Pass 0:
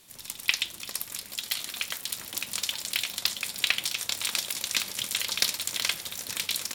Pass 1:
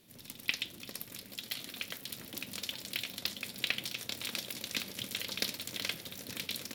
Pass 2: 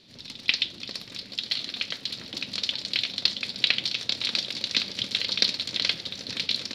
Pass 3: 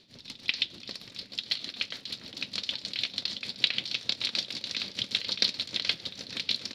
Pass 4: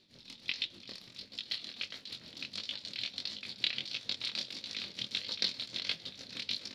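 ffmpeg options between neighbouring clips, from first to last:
ffmpeg -i in.wav -af "equalizer=frequency=125:width_type=o:width=1:gain=7,equalizer=frequency=250:width_type=o:width=1:gain=9,equalizer=frequency=500:width_type=o:width=1:gain=5,equalizer=frequency=1000:width_type=o:width=1:gain=-5,equalizer=frequency=8000:width_type=o:width=1:gain=-8,volume=-6.5dB" out.wav
ffmpeg -i in.wav -af "lowpass=frequency=4400:width_type=q:width=3.4,volume=5dB" out.wav
ffmpeg -i in.wav -af "tremolo=f=6.6:d=0.63,volume=-1.5dB" out.wav
ffmpeg -i in.wav -af "flanger=delay=18.5:depth=7.3:speed=1.5,volume=-3.5dB" out.wav

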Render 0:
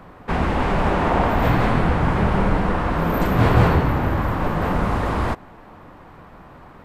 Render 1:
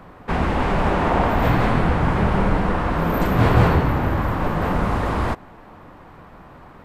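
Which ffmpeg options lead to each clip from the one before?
ffmpeg -i in.wav -af anull out.wav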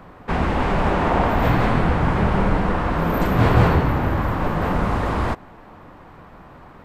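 ffmpeg -i in.wav -af "equalizer=frequency=11000:width_type=o:width=0.54:gain=-3" out.wav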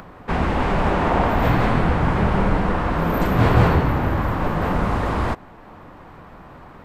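ffmpeg -i in.wav -af "acompressor=mode=upward:threshold=-37dB:ratio=2.5" out.wav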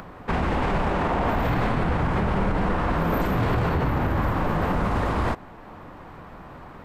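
ffmpeg -i in.wav -af "alimiter=limit=-15dB:level=0:latency=1:release=39" out.wav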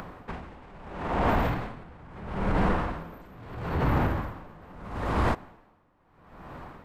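ffmpeg -i in.wav -af "aeval=exprs='val(0)*pow(10,-25*(0.5-0.5*cos(2*PI*0.76*n/s))/20)':channel_layout=same" out.wav

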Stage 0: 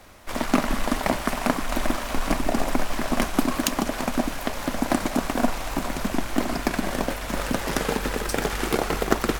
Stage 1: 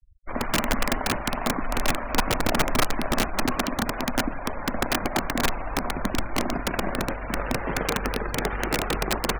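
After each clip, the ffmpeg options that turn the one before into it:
ffmpeg -i in.wav -filter_complex "[0:a]acrossover=split=2800[link_01][link_02];[link_02]acompressor=threshold=-48dB:ratio=4:attack=1:release=60[link_03];[link_01][link_03]amix=inputs=2:normalize=0,afftfilt=real='re*gte(hypot(re,im),0.0224)':imag='im*gte(hypot(re,im),0.0224)':win_size=1024:overlap=0.75,aeval=exprs='(mod(5.62*val(0)+1,2)-1)/5.62':channel_layout=same" out.wav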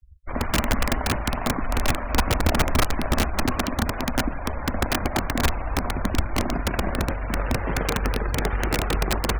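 ffmpeg -i in.wav -af "equalizer=frequency=70:width=1.1:gain=12.5" out.wav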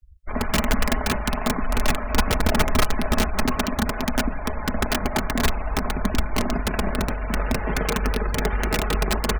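ffmpeg -i in.wav -af "aecho=1:1:4.7:0.47" out.wav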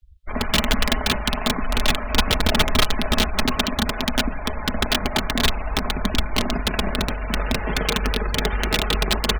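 ffmpeg -i in.wav -af "equalizer=frequency=3500:width_type=o:width=0.82:gain=11" out.wav

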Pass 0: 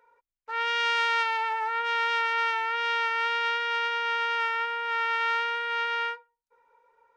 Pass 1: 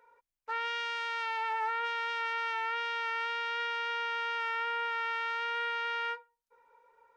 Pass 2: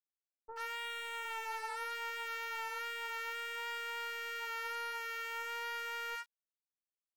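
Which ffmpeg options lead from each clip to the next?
ffmpeg -i in.wav -af "alimiter=limit=-24dB:level=0:latency=1" out.wav
ffmpeg -i in.wav -filter_complex "[0:a]aeval=exprs='val(0)*gte(abs(val(0)),0.00562)':channel_layout=same,aeval=exprs='0.0668*(cos(1*acos(clip(val(0)/0.0668,-1,1)))-cos(1*PI/2))+0.00531*(cos(5*acos(clip(val(0)/0.0668,-1,1)))-cos(5*PI/2))+0.00237*(cos(6*acos(clip(val(0)/0.0668,-1,1)))-cos(6*PI/2))+0.00841*(cos(7*acos(clip(val(0)/0.0668,-1,1)))-cos(7*PI/2))':channel_layout=same,acrossover=split=940[link_01][link_02];[link_02]adelay=80[link_03];[link_01][link_03]amix=inputs=2:normalize=0,volume=-5.5dB" out.wav

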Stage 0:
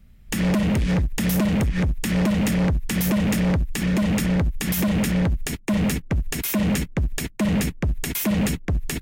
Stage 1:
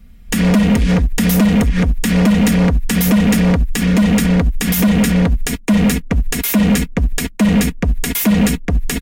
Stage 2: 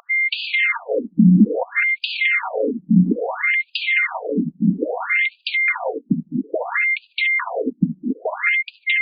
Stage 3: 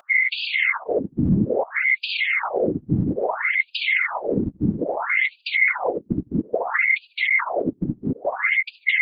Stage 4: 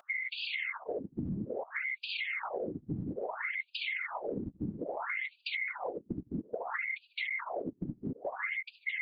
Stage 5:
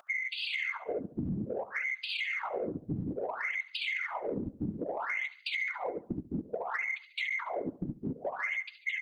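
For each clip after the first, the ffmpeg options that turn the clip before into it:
ffmpeg -i in.wav -af "aecho=1:1:4.2:0.57,volume=6.5dB" out.wav
ffmpeg -i in.wav -af "aeval=exprs='val(0)+0.1*sin(2*PI*2100*n/s)':channel_layout=same,equalizer=frequency=270:width=1.5:gain=-2,afftfilt=real='re*between(b*sr/1024,210*pow(3500/210,0.5+0.5*sin(2*PI*0.6*pts/sr))/1.41,210*pow(3500/210,0.5+0.5*sin(2*PI*0.6*pts/sr))*1.41)':imag='im*between(b*sr/1024,210*pow(3500/210,0.5+0.5*sin(2*PI*0.6*pts/sr))/1.41,210*pow(3500/210,0.5+0.5*sin(2*PI*0.6*pts/sr))*1.41)':win_size=1024:overlap=0.75,volume=5dB" out.wav
ffmpeg -i in.wav -af "alimiter=limit=-14dB:level=0:latency=1:release=65,afftfilt=real='hypot(re,im)*cos(2*PI*random(0))':imag='hypot(re,im)*sin(2*PI*random(1))':win_size=512:overlap=0.75,volume=6.5dB" out.wav
ffmpeg -i in.wav -af "acompressor=threshold=-26dB:ratio=6,volume=-7.5dB" out.wav
ffmpeg -i in.wav -filter_complex "[0:a]asplit=2[link_01][link_02];[link_02]asoftclip=type=tanh:threshold=-33.5dB,volume=-9.5dB[link_03];[link_01][link_03]amix=inputs=2:normalize=0,aecho=1:1:70|140|210|280:0.106|0.0572|0.0309|0.0167" out.wav

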